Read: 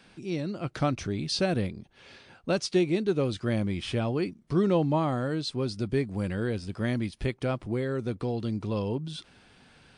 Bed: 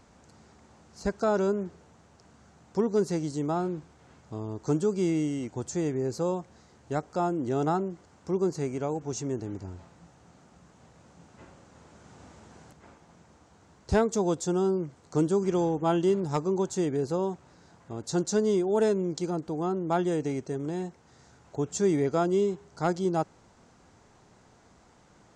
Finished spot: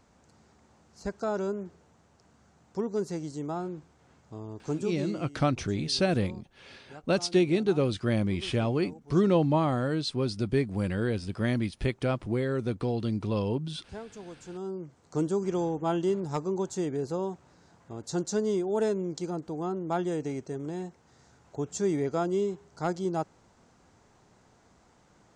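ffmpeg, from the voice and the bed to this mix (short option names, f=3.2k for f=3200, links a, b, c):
-filter_complex "[0:a]adelay=4600,volume=1dB[a];[1:a]volume=10dB,afade=t=out:st=4.81:d=0.46:silence=0.223872,afade=t=in:st=14.42:d=0.82:silence=0.177828[b];[a][b]amix=inputs=2:normalize=0"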